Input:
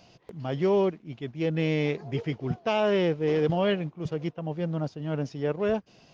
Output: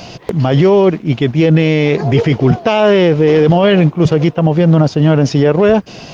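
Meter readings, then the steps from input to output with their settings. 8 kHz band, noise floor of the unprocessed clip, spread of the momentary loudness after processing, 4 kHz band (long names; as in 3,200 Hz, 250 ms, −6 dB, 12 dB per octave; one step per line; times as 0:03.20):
can't be measured, −58 dBFS, 4 LU, +15.5 dB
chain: boost into a limiter +26 dB
level −1 dB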